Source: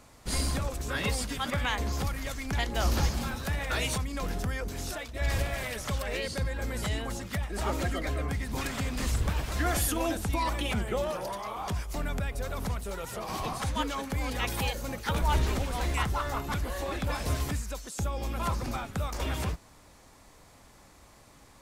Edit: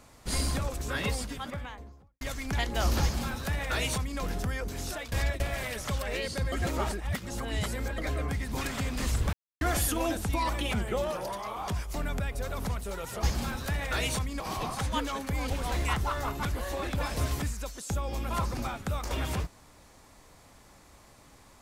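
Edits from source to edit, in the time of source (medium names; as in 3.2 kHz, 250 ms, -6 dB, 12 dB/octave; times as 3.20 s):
0.88–2.21 s: studio fade out
3.02–4.19 s: copy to 13.23 s
5.12–5.40 s: reverse
6.52–7.98 s: reverse
9.33–9.61 s: mute
14.33–15.59 s: delete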